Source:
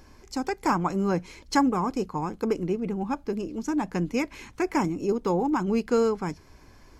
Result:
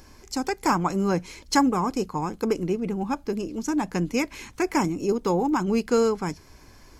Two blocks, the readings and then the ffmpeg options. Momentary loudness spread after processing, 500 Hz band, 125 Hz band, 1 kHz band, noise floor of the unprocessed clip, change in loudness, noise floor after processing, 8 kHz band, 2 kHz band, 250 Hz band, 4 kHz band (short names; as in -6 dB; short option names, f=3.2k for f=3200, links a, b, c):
8 LU, +1.5 dB, +1.5 dB, +2.0 dB, -54 dBFS, +2.0 dB, -52 dBFS, +6.5 dB, +2.5 dB, +1.5 dB, +5.5 dB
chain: -af "highshelf=f=4.1k:g=7,volume=1.5dB"